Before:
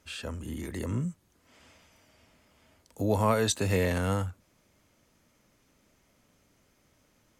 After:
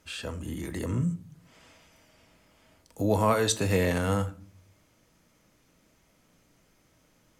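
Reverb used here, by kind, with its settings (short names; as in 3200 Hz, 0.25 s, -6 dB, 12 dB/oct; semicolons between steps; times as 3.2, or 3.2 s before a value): shoebox room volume 420 m³, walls furnished, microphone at 0.61 m; gain +1.5 dB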